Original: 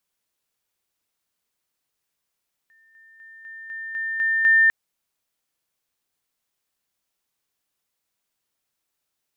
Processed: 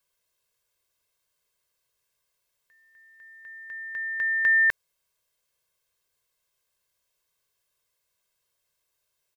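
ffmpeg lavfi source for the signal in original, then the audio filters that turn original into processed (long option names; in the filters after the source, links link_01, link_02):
-f lavfi -i "aevalsrc='pow(10,(-54.5+6*floor(t/0.25))/20)*sin(2*PI*1800*t)':duration=2:sample_rate=44100"
-af "aecho=1:1:1.9:0.76"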